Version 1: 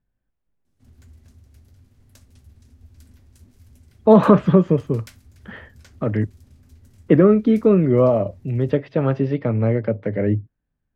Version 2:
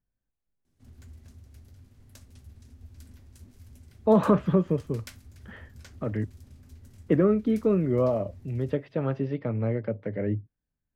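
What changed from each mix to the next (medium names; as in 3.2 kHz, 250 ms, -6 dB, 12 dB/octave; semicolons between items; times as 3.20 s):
speech -8.5 dB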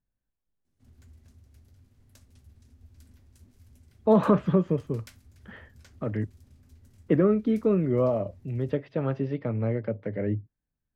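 background -5.5 dB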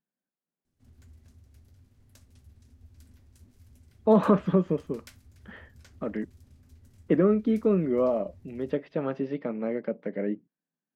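speech: add brick-wall FIR high-pass 150 Hz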